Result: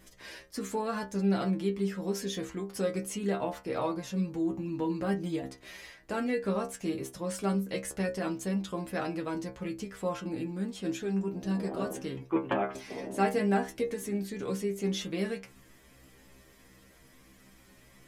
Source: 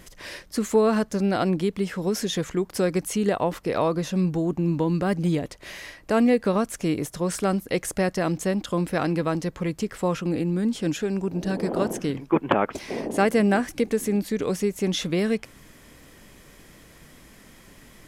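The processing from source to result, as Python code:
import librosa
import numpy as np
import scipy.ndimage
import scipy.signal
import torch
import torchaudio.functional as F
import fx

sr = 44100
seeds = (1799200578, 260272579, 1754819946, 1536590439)

y = fx.stiff_resonator(x, sr, f0_hz=64.0, decay_s=0.34, stiffness=0.002)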